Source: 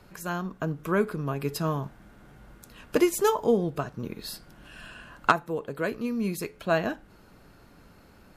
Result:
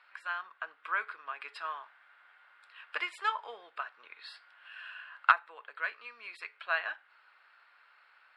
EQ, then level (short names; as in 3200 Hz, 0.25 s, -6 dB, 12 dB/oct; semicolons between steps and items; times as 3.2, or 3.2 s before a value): running mean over 7 samples; ladder high-pass 1100 Hz, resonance 20%; air absorption 98 m; +7.5 dB